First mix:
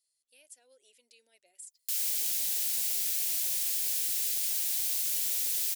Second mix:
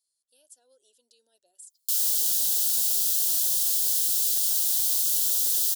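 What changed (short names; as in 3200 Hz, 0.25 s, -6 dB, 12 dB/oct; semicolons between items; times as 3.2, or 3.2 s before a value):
background +6.5 dB; master: add Butterworth band-stop 2200 Hz, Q 1.4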